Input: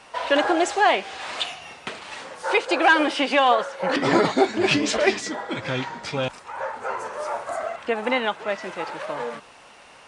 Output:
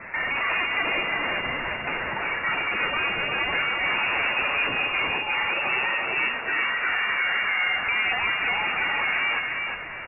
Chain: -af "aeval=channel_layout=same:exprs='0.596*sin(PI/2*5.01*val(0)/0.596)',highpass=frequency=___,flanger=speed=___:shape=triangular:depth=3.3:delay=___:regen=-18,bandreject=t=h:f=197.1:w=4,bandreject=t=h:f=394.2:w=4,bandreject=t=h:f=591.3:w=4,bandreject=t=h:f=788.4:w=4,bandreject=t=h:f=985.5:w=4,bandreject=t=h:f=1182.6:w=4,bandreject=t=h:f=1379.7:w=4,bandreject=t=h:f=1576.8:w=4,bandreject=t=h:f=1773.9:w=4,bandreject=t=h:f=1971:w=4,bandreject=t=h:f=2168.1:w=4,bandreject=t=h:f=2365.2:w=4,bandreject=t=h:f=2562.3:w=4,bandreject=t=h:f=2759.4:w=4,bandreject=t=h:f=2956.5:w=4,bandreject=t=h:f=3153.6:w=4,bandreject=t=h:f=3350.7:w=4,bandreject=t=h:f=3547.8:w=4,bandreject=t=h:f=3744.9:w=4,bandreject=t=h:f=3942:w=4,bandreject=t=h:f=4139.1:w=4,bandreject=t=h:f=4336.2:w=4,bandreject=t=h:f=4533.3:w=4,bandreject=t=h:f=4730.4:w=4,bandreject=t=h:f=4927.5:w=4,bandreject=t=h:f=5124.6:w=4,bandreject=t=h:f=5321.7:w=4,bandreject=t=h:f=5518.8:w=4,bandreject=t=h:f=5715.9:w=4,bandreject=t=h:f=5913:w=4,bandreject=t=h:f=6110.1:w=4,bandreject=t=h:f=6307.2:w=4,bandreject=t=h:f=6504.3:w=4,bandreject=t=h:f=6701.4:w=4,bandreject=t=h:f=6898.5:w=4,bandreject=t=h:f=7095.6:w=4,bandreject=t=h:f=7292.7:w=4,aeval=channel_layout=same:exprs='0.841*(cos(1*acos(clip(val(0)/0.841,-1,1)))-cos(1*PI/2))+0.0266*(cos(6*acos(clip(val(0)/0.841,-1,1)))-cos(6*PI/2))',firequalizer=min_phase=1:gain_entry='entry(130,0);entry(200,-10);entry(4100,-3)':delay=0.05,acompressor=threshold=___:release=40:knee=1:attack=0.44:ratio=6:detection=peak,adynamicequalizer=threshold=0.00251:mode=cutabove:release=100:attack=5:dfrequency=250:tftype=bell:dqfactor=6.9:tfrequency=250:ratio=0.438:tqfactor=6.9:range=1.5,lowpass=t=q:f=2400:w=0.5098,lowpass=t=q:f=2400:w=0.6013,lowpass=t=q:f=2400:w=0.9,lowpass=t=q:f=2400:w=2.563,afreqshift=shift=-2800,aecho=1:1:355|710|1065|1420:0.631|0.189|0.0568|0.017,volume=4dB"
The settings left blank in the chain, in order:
150, 1.4, 6, -25dB